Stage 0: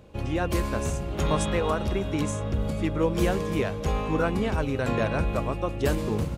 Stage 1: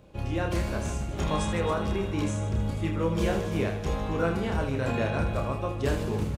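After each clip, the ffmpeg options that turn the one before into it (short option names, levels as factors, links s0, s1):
-filter_complex "[0:a]acrossover=split=8800[s0][s1];[s1]acompressor=threshold=0.00251:ratio=4:attack=1:release=60[s2];[s0][s2]amix=inputs=2:normalize=0,asplit=2[s3][s4];[s4]aecho=0:1:30|78|154.8|277.7|474.3:0.631|0.398|0.251|0.158|0.1[s5];[s3][s5]amix=inputs=2:normalize=0,volume=0.631"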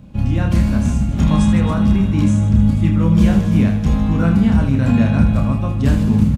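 -af "lowshelf=f=300:t=q:w=3:g=8.5,volume=1.78"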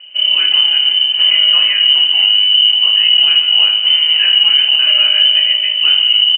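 -af "lowpass=f=2600:t=q:w=0.5098,lowpass=f=2600:t=q:w=0.6013,lowpass=f=2600:t=q:w=0.9,lowpass=f=2600:t=q:w=2.563,afreqshift=-3100,alimiter=level_in=1.68:limit=0.891:release=50:level=0:latency=1,volume=0.891"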